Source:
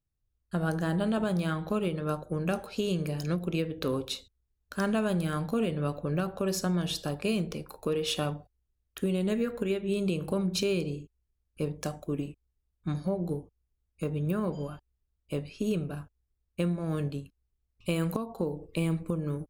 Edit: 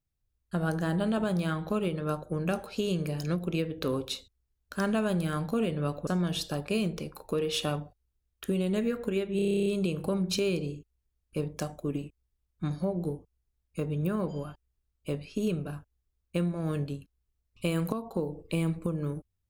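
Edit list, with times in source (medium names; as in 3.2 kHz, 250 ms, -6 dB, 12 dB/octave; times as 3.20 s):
6.07–6.61 s: delete
9.90 s: stutter 0.03 s, 11 plays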